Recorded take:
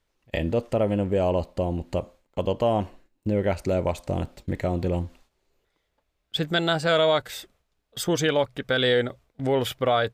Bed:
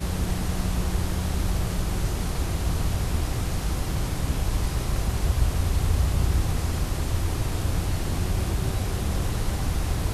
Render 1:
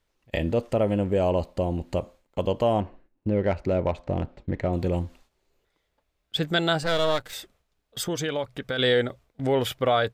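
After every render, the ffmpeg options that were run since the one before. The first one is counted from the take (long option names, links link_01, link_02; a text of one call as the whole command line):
ffmpeg -i in.wav -filter_complex "[0:a]asettb=1/sr,asplit=3[link_01][link_02][link_03];[link_01]atrim=end=2.804[link_04];[link_02]atrim=start=2.8:end=4.73,asetpts=PTS-STARTPTS,afade=type=in:duration=0.004:curve=qsin,afade=type=out:start_time=1.926:duration=0.004:curve=qsin,adynamicsmooth=sensitivity=2:basefreq=2400[link_05];[link_03]atrim=start=4.726[link_06];[link_04][link_05]acrossfade=duration=0.004:curve1=hsin:curve2=qsin[link_07];[link_07][link_06]acrossfade=duration=0.004:curve1=qsin:curve2=hsin,asettb=1/sr,asplit=3[link_08][link_09][link_10];[link_08]atrim=end=6.834[link_11];[link_09]atrim=start=6.83:end=7.33,asetpts=PTS-STARTPTS,afade=type=in:duration=0.004:curve=qsin,afade=type=out:start_time=0.496:duration=0.004:curve=qsin,aeval=exprs='if(lt(val(0),0),0.251*val(0),val(0))':channel_layout=same[link_12];[link_10]atrim=start=7.326[link_13];[link_11][link_12]acrossfade=duration=0.004:curve1=hsin:curve2=qsin[link_14];[link_14][link_13]acrossfade=duration=0.004:curve1=qsin:curve2=hsin,asettb=1/sr,asplit=3[link_15][link_16][link_17];[link_15]atrim=end=8.054[link_18];[link_16]atrim=start=8.05:end=8.79,asetpts=PTS-STARTPTS,afade=type=in:duration=0.004:curve=qsin,afade=type=out:start_time=0.736:duration=0.004:curve=qsin,acompressor=threshold=-28dB:ratio=2:attack=3.2:release=140:knee=1:detection=peak[link_19];[link_17]atrim=start=8.786[link_20];[link_18][link_19]acrossfade=duration=0.004:curve1=hsin:curve2=qsin[link_21];[link_21][link_20]acrossfade=duration=0.004:curve1=qsin:curve2=hsin" out.wav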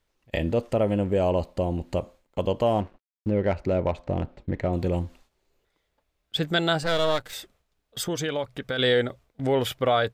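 ffmpeg -i in.wav -filter_complex "[0:a]asettb=1/sr,asplit=3[link_01][link_02][link_03];[link_01]atrim=end=2.664[link_04];[link_02]atrim=start=2.66:end=3.31,asetpts=PTS-STARTPTS,afade=type=in:duration=0.004:curve=qsin,afade=type=out:start_time=0.646:duration=0.004:curve=qsin,aeval=exprs='sgn(val(0))*max(abs(val(0))-0.00299,0)':channel_layout=same[link_05];[link_03]atrim=start=3.306[link_06];[link_04][link_05]acrossfade=duration=0.004:curve1=hsin:curve2=qsin[link_07];[link_07][link_06]acrossfade=duration=0.004:curve1=qsin:curve2=hsin" out.wav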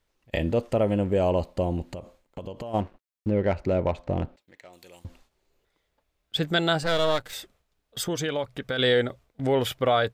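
ffmpeg -i in.wav -filter_complex "[0:a]asplit=3[link_01][link_02][link_03];[link_01]afade=type=out:start_time=1.91:duration=0.02[link_04];[link_02]acompressor=threshold=-32dB:ratio=10:attack=3.2:release=140:knee=1:detection=peak,afade=type=in:start_time=1.91:duration=0.02,afade=type=out:start_time=2.73:duration=0.02[link_05];[link_03]afade=type=in:start_time=2.73:duration=0.02[link_06];[link_04][link_05][link_06]amix=inputs=3:normalize=0,asettb=1/sr,asplit=3[link_07][link_08][link_09];[link_07]atrim=end=4.364[link_10];[link_08]atrim=start=4.36:end=5.05,asetpts=PTS-STARTPTS,afade=type=in:duration=0.004:curve=qsin,afade=type=out:start_time=0.686:duration=0.004:curve=qsin,aderivative[link_11];[link_09]atrim=start=5.046[link_12];[link_10][link_11]acrossfade=duration=0.004:curve1=hsin:curve2=qsin[link_13];[link_13][link_12]acrossfade=duration=0.004:curve1=qsin:curve2=hsin" out.wav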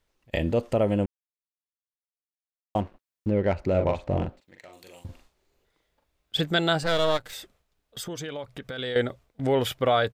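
ffmpeg -i in.wav -filter_complex "[0:a]asplit=3[link_01][link_02][link_03];[link_01]afade=type=out:start_time=3.73:duration=0.02[link_04];[link_02]asplit=2[link_05][link_06];[link_06]adelay=42,volume=-4.5dB[link_07];[link_05][link_07]amix=inputs=2:normalize=0,afade=type=in:start_time=3.73:duration=0.02,afade=type=out:start_time=6.4:duration=0.02[link_08];[link_03]afade=type=in:start_time=6.4:duration=0.02[link_09];[link_04][link_08][link_09]amix=inputs=3:normalize=0,asettb=1/sr,asplit=3[link_10][link_11][link_12];[link_10]atrim=end=7.174[link_13];[link_11]atrim=start=7.17:end=8.96,asetpts=PTS-STARTPTS,afade=type=in:duration=0.004:curve=qsin,afade=type=out:start_time=1.786:duration=0.004:curve=qsin,acompressor=threshold=-36dB:ratio=2:attack=3.2:release=140:knee=1:detection=peak[link_14];[link_12]atrim=start=8.956[link_15];[link_13][link_14]acrossfade=duration=0.004:curve1=hsin:curve2=qsin[link_16];[link_16][link_15]acrossfade=duration=0.004:curve1=qsin:curve2=hsin,asplit=3[link_17][link_18][link_19];[link_17]atrim=end=1.06,asetpts=PTS-STARTPTS,afade=type=out:start_time=1.056:duration=0.004:curve=hsin[link_20];[link_18]atrim=start=1.06:end=2.75,asetpts=PTS-STARTPTS,volume=0[link_21];[link_19]atrim=start=2.75,asetpts=PTS-STARTPTS,afade=type=in:duration=0.004:curve=hsin[link_22];[link_20][link_21][link_22]concat=n=3:v=0:a=1" out.wav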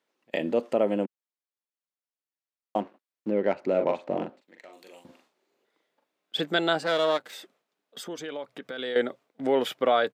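ffmpeg -i in.wav -af "highpass=frequency=220:width=0.5412,highpass=frequency=220:width=1.3066,highshelf=frequency=4700:gain=-7.5" out.wav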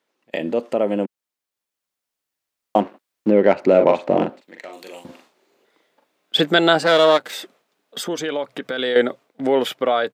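ffmpeg -i in.wav -filter_complex "[0:a]asplit=2[link_01][link_02];[link_02]alimiter=limit=-18dB:level=0:latency=1:release=96,volume=-3dB[link_03];[link_01][link_03]amix=inputs=2:normalize=0,dynaudnorm=framelen=450:gausssize=7:maxgain=11.5dB" out.wav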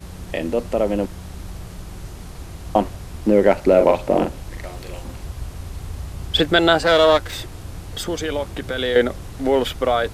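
ffmpeg -i in.wav -i bed.wav -filter_complex "[1:a]volume=-8.5dB[link_01];[0:a][link_01]amix=inputs=2:normalize=0" out.wav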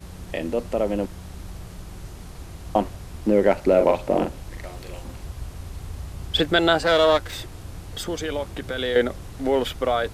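ffmpeg -i in.wav -af "volume=-3.5dB" out.wav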